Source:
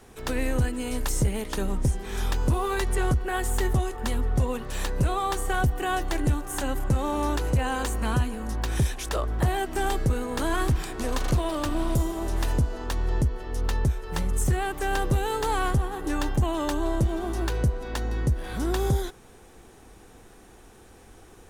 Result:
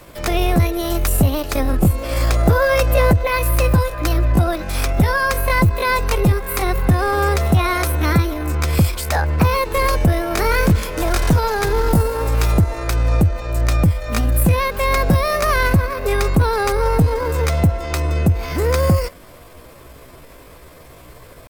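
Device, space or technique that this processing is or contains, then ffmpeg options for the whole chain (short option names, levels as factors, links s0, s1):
chipmunk voice: -filter_complex "[0:a]asetrate=60591,aresample=44100,atempo=0.727827,asettb=1/sr,asplit=3[s0][s1][s2];[s0]atrim=end=2.014[s3];[s1]atrim=start=2.01:end=3.27,asetpts=PTS-STARTPTS,afade=t=in:d=0.004:c=qsin,afade=t=out:st=1.256:d=0.004:c=qsin,equalizer=f=640:w=1.4:g=5.5[s4];[s2]atrim=start=3.266[s5];[s3][s4]acrossfade=d=0.004:c1=hsin:c2=qsin[s6];[s6][s5]acrossfade=d=0.004:c1=qsin:c2=hsin,volume=2.82"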